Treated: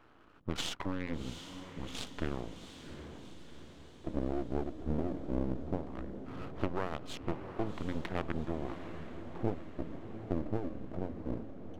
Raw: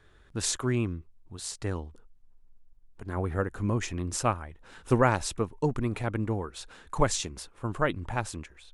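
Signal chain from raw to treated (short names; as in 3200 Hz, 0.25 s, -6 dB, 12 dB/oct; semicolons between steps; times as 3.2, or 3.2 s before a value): Wiener smoothing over 15 samples; HPF 170 Hz 12 dB/oct; high shelf 9500 Hz -8.5 dB; notches 60/120/180/240/300/360/420 Hz; compressor 12:1, threshold -38 dBFS, peak gain reduction 21.5 dB; LFO low-pass square 0.23 Hz 390–3700 Hz; formant shift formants +2 st; half-wave rectifier; diffused feedback echo 0.555 s, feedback 56%, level -9.5 dB; speed mistake 45 rpm record played at 33 rpm; Doppler distortion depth 0.56 ms; gain +8.5 dB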